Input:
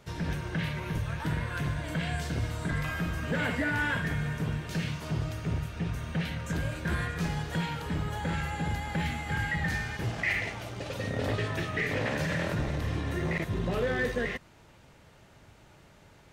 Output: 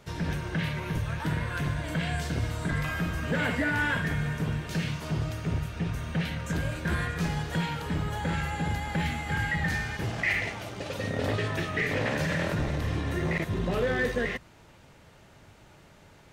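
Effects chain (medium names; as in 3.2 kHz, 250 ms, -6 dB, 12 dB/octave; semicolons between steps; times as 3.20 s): hum notches 60/120 Hz; trim +2 dB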